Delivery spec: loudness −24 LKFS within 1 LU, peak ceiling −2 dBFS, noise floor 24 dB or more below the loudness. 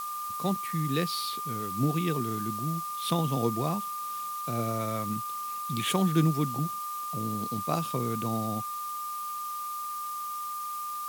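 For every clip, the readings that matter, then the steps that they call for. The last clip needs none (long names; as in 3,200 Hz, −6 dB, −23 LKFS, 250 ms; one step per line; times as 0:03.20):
interfering tone 1,200 Hz; level of the tone −33 dBFS; background noise floor −36 dBFS; target noise floor −55 dBFS; integrated loudness −30.5 LKFS; sample peak −12.0 dBFS; target loudness −24.0 LKFS
→ notch filter 1,200 Hz, Q 30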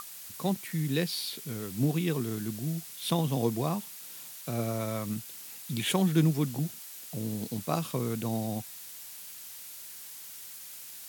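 interfering tone none found; background noise floor −45 dBFS; target noise floor −57 dBFS
→ broadband denoise 12 dB, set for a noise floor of −45 dBFS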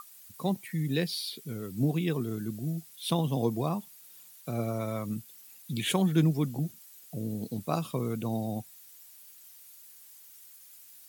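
background noise floor −53 dBFS; target noise floor −56 dBFS
→ broadband denoise 6 dB, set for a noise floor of −53 dBFS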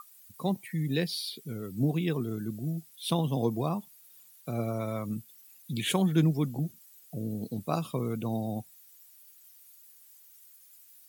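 background noise floor −57 dBFS; integrated loudness −31.5 LKFS; sample peak −13.0 dBFS; target loudness −24.0 LKFS
→ level +7.5 dB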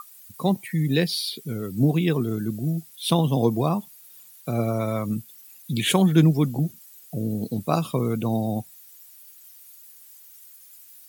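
integrated loudness −24.0 LKFS; sample peak −5.5 dBFS; background noise floor −49 dBFS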